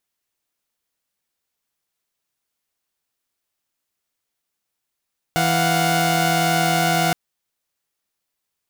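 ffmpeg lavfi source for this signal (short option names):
-f lavfi -i "aevalsrc='0.119*((2*mod(164.81*t,1)-1)+(2*mod(698.46*t,1)-1)+(2*mod(739.99*t,1)-1))':d=1.77:s=44100"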